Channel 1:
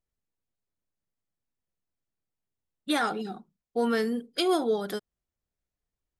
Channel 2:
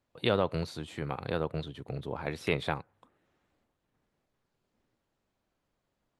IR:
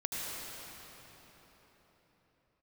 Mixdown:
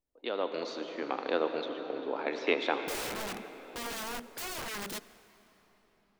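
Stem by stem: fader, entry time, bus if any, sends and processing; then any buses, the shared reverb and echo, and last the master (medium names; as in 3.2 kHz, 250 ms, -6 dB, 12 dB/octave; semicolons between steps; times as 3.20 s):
-1.5 dB, 0.00 s, send -20.5 dB, compression 4:1, threshold -36 dBFS, peak gain reduction 12.5 dB; waveshaping leveller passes 1; integer overflow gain 33 dB
-12.0 dB, 0.00 s, send -7 dB, Chebyshev band-pass 260–6500 Hz, order 4; level-controlled noise filter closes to 570 Hz, open at -32.5 dBFS; level rider gain up to 13 dB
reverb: on, RT60 4.6 s, pre-delay 71 ms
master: none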